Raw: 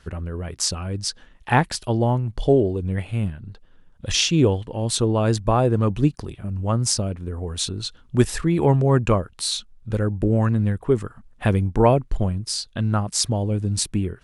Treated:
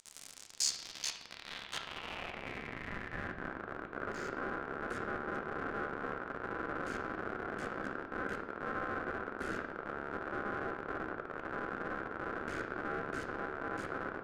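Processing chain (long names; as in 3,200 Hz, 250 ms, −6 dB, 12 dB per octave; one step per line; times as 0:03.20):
brick-wall band-stop 150–5,200 Hz
in parallel at +1 dB: downward compressor 6 to 1, threshold −33 dBFS, peak gain reduction 16.5 dB
on the sum: background noise pink −37 dBFS
amplitude modulation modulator 71 Hz, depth 95%
comparator with hysteresis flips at −32 dBFS
band-pass filter sweep 7,600 Hz → 560 Hz, 0:00.27–0:03.64
ring modulation 910 Hz
on a send at −4 dB: high-frequency loss of the air 67 metres + convolution reverb RT60 1.1 s, pre-delay 4 ms
on the sum: level +4 dB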